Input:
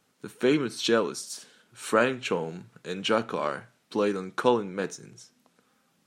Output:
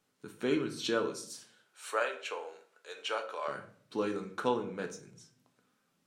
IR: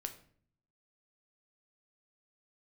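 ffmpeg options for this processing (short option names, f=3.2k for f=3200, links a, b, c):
-filter_complex "[0:a]asettb=1/sr,asplit=3[a][b][c];[a]atrim=end=1.304[d];[b]atrim=start=1.3:end=3.48,asetpts=PTS-STARTPTS,afade=t=in:d=0.004:c=qsin,afade=t=out:st=2.176:d=0.004:c=qsin,highpass=f=500:w=0.5412,highpass=f=500:w=1.3066[e];[c]atrim=start=3.476[f];[d][e]acrossfade=d=0.004:c1=hsin:c2=qsin[g];[g][f]acrossfade=d=0.004:c1=qsin:c2=hsin[h];[1:a]atrim=start_sample=2205[i];[h][i]afir=irnorm=-1:irlink=0,volume=-5.5dB"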